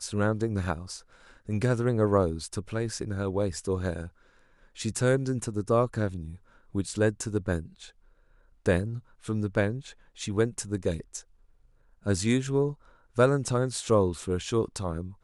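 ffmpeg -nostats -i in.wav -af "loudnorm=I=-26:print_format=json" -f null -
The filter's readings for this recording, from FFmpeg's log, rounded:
"input_i" : "-28.5",
"input_tp" : "-9.7",
"input_lra" : "3.4",
"input_thresh" : "-39.3",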